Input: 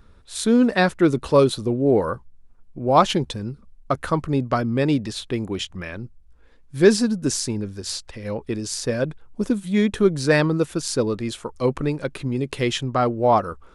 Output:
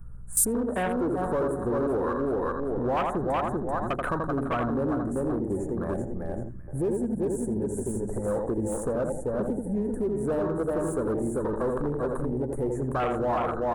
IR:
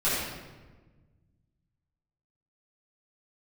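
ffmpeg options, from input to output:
-filter_complex "[0:a]asuperstop=centerf=3700:order=8:qfactor=0.57,asplit=2[a][b];[b]aecho=0:1:387|774|1161:0.473|0.109|0.025[c];[a][c]amix=inputs=2:normalize=0,acompressor=threshold=-33dB:ratio=4,equalizer=f=120:t=o:w=2.6:g=-9,asplit=2[d][e];[e]adelay=83,lowpass=f=1.8k:p=1,volume=-5dB,asplit=2[f][g];[g]adelay=83,lowpass=f=1.8k:p=1,volume=0.43,asplit=2[h][i];[i]adelay=83,lowpass=f=1.8k:p=1,volume=0.43,asplit=2[j][k];[k]adelay=83,lowpass=f=1.8k:p=1,volume=0.43,asplit=2[l][m];[m]adelay=83,lowpass=f=1.8k:p=1,volume=0.43[n];[f][h][j][l][n]amix=inputs=5:normalize=0[o];[d][o]amix=inputs=2:normalize=0,acontrast=66,volume=27.5dB,asoftclip=hard,volume=-27.5dB,aeval=exprs='val(0)+0.00398*(sin(2*PI*60*n/s)+sin(2*PI*2*60*n/s)/2+sin(2*PI*3*60*n/s)/3+sin(2*PI*4*60*n/s)/4+sin(2*PI*5*60*n/s)/5)':c=same,afwtdn=0.0141,highshelf=f=5.3k:g=9,volume=4.5dB"

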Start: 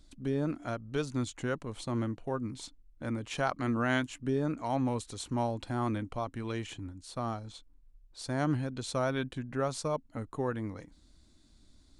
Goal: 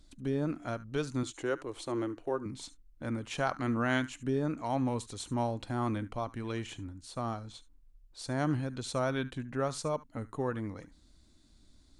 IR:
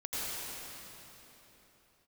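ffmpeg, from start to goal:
-filter_complex "[0:a]asettb=1/sr,asplit=3[a][b][c];[a]atrim=end=1.234[d];[b]atrim=start=1.23:end=2.46,asetpts=PTS-STARTPTS,afade=t=in:d=0.004:c=qsin,afade=t=out:st=1.226:d=0.004:c=qsin,lowshelf=f=260:t=q:w=3:g=-7[e];[c]atrim=start=2.456[f];[d][e]acrossfade=d=0.004:c1=hsin:c2=qsin[g];[g][f]acrossfade=d=0.004:c1=qsin:c2=hsin[h];[1:a]atrim=start_sample=2205,atrim=end_sample=3528,asetrate=48510,aresample=44100[i];[h][i]afir=irnorm=-1:irlink=0,volume=5.5dB"

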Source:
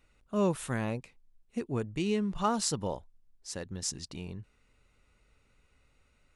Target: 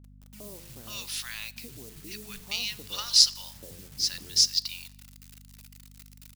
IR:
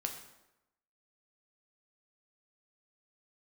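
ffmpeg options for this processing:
-filter_complex "[0:a]highshelf=f=6.3k:t=q:w=3:g=-9.5,bandreject=f=85.58:t=h:w=4,bandreject=f=171.16:t=h:w=4,bandreject=f=256.74:t=h:w=4,bandreject=f=342.32:t=h:w=4,bandreject=f=427.9:t=h:w=4,bandreject=f=513.48:t=h:w=4,bandreject=f=599.06:t=h:w=4,bandreject=f=684.64:t=h:w=4,bandreject=f=770.22:t=h:w=4,bandreject=f=855.8:t=h:w=4,bandreject=f=941.38:t=h:w=4,bandreject=f=1.02696k:t=h:w=4,bandreject=f=1.11254k:t=h:w=4,bandreject=f=1.19812k:t=h:w=4,acrossover=split=2100[a][b];[a]acompressor=threshold=-40dB:ratio=10[c];[c][b]amix=inputs=2:normalize=0,acrossover=split=180|780[d][e][f];[e]adelay=70[g];[f]adelay=540[h];[d][g][h]amix=inputs=3:normalize=0,acrusher=bits=9:mix=0:aa=0.000001,crystalizer=i=9.5:c=0,aeval=exprs='val(0)+0.00447*(sin(2*PI*50*n/s)+sin(2*PI*2*50*n/s)/2+sin(2*PI*3*50*n/s)/3+sin(2*PI*4*50*n/s)/4+sin(2*PI*5*50*n/s)/5)':c=same,asplit=2[i][j];[1:a]atrim=start_sample=2205[k];[j][k]afir=irnorm=-1:irlink=0,volume=-12dB[l];[i][l]amix=inputs=2:normalize=0,volume=-5dB"

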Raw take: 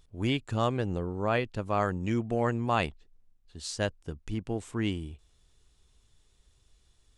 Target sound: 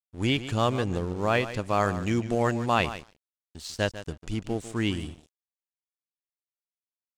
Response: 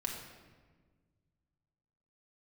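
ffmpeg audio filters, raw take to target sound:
-filter_complex "[0:a]asplit=2[a][b];[b]adelay=147,lowpass=f=3.8k:p=1,volume=-12dB,asplit=2[c][d];[d]adelay=147,lowpass=f=3.8k:p=1,volume=0.16[e];[c][e]amix=inputs=2:normalize=0[f];[a][f]amix=inputs=2:normalize=0,acrossover=split=3900[g][h];[h]acompressor=threshold=-51dB:ratio=4:attack=1:release=60[i];[g][i]amix=inputs=2:normalize=0,aeval=exprs='sgn(val(0))*max(abs(val(0))-0.00299,0)':c=same,equalizer=f=7k:w=0.54:g=9.5,volume=3dB"

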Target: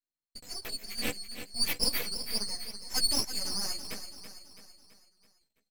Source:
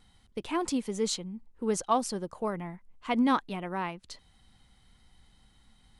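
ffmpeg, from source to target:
-filter_complex "[0:a]afftfilt=real='real(if(lt(b,736),b+184*(1-2*mod(floor(b/184),2)),b),0)':imag='imag(if(lt(b,736),b+184*(1-2*mod(floor(b/184),2)),b),0)':win_size=2048:overlap=0.75,agate=range=-31dB:threshold=-54dB:ratio=16:detection=peak,equalizer=f=125:t=o:w=1:g=10,equalizer=f=250:t=o:w=1:g=3,equalizer=f=500:t=o:w=1:g=9,equalizer=f=1k:t=o:w=1:g=-10,equalizer=f=2k:t=o:w=1:g=7,equalizer=f=4k:t=o:w=1:g=-11,equalizer=f=8k:t=o:w=1:g=-6,acrossover=split=1800[a][b];[b]dynaudnorm=f=230:g=11:m=12dB[c];[a][c]amix=inputs=2:normalize=0,aeval=exprs='(tanh(5.62*val(0)+0.4)-tanh(0.4))/5.62':c=same,asplit=2[d][e];[e]adelay=15,volume=-2dB[f];[d][f]amix=inputs=2:normalize=0,flanger=delay=3.1:depth=1.9:regen=6:speed=0.62:shape=triangular,asetrate=46305,aresample=44100,aeval=exprs='max(val(0),0)':c=same,asplit=2[g][h];[h]aecho=0:1:331|662|993|1324|1655:0.299|0.149|0.0746|0.0373|0.0187[i];[g][i]amix=inputs=2:normalize=0,volume=4.5dB"

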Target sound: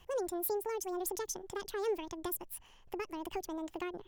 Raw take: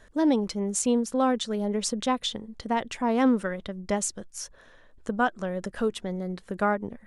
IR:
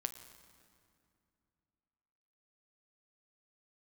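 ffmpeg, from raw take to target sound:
-filter_complex "[0:a]acrossover=split=260|3000[a][b][c];[b]acompressor=threshold=-36dB:ratio=6[d];[a][d][c]amix=inputs=3:normalize=0,asetrate=76440,aresample=44100,volume=-6.5dB"

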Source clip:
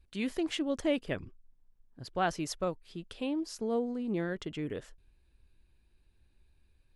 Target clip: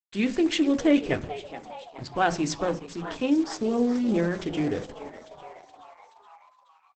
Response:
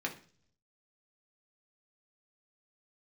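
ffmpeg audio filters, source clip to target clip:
-filter_complex "[0:a]acrusher=bits=7:mix=0:aa=0.5,asplit=7[a][b][c][d][e][f][g];[b]adelay=424,afreqshift=130,volume=-14dB[h];[c]adelay=848,afreqshift=260,volume=-18.4dB[i];[d]adelay=1272,afreqshift=390,volume=-22.9dB[j];[e]adelay=1696,afreqshift=520,volume=-27.3dB[k];[f]adelay=2120,afreqshift=650,volume=-31.7dB[l];[g]adelay=2544,afreqshift=780,volume=-36.2dB[m];[a][h][i][j][k][l][m]amix=inputs=7:normalize=0,asplit=2[n][o];[1:a]atrim=start_sample=2205,lowshelf=f=140:g=8[p];[o][p]afir=irnorm=-1:irlink=0,volume=-4.5dB[q];[n][q]amix=inputs=2:normalize=0,volume=3.5dB" -ar 48000 -c:a libopus -b:a 10k

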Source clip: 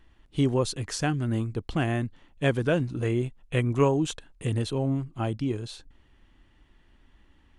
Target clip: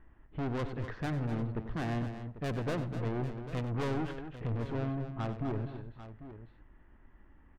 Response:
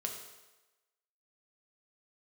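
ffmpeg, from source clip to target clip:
-filter_complex "[0:a]lowpass=f=1.9k:w=0.5412,lowpass=f=1.9k:w=1.3066,aeval=exprs='(tanh(44.7*val(0)+0.35)-tanh(0.35))/44.7':c=same,aecho=1:1:94|248|795:0.237|0.316|0.224,asplit=2[a][b];[1:a]atrim=start_sample=2205[c];[b][c]afir=irnorm=-1:irlink=0,volume=-18dB[d];[a][d]amix=inputs=2:normalize=0"

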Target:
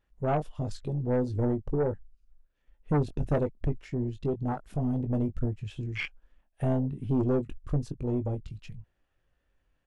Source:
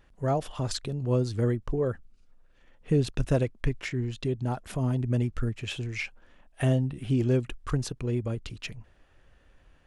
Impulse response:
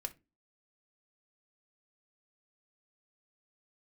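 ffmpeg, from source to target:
-filter_complex "[0:a]afwtdn=0.0316,asplit=2[a][b];[b]adelay=20,volume=-8dB[c];[a][c]amix=inputs=2:normalize=0,aeval=exprs='0.266*(cos(1*acos(clip(val(0)/0.266,-1,1)))-cos(1*PI/2))+0.0473*(cos(4*acos(clip(val(0)/0.266,-1,1)))-cos(4*PI/2))+0.0596*(cos(5*acos(clip(val(0)/0.266,-1,1)))-cos(5*PI/2))+0.0531*(cos(6*acos(clip(val(0)/0.266,-1,1)))-cos(6*PI/2))':c=same,volume=-5.5dB"

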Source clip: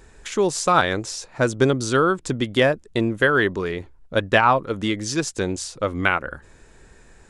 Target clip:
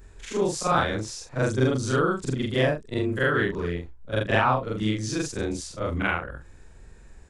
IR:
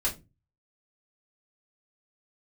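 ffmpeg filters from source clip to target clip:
-af "afftfilt=real='re':imag='-im':win_size=4096:overlap=0.75,lowshelf=f=150:g=10,volume=-1.5dB"

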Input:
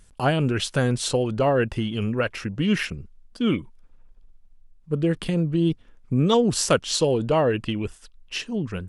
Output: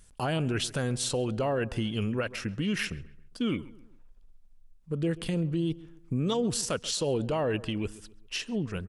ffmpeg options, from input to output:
-filter_complex "[0:a]highshelf=f=5k:g=5.5,alimiter=limit=-16.5dB:level=0:latency=1:release=73,asplit=2[a][b];[b]adelay=135,lowpass=f=1.9k:p=1,volume=-18dB,asplit=2[c][d];[d]adelay=135,lowpass=f=1.9k:p=1,volume=0.41,asplit=2[e][f];[f]adelay=135,lowpass=f=1.9k:p=1,volume=0.41[g];[a][c][e][g]amix=inputs=4:normalize=0,volume=-4dB"

